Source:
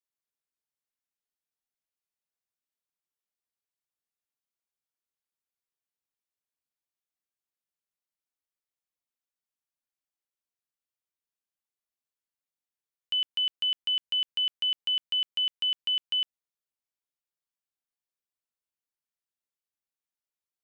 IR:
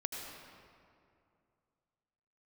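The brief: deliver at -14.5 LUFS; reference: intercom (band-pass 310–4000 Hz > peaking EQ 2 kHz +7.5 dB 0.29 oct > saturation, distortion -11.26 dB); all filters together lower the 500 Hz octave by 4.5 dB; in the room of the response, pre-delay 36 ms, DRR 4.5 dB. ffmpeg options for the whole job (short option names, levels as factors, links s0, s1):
-filter_complex "[0:a]equalizer=f=500:t=o:g=-5,asplit=2[s0][s1];[1:a]atrim=start_sample=2205,adelay=36[s2];[s1][s2]afir=irnorm=-1:irlink=0,volume=0.501[s3];[s0][s3]amix=inputs=2:normalize=0,highpass=310,lowpass=4000,equalizer=f=2000:t=o:w=0.29:g=7.5,asoftclip=threshold=0.0398,volume=5.96"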